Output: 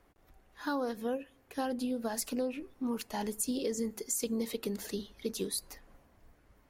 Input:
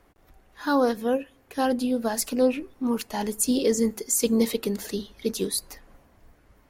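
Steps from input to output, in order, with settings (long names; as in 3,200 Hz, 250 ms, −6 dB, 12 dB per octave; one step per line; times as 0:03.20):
downward compressor 6 to 1, threshold −24 dBFS, peak gain reduction 8.5 dB
level −6 dB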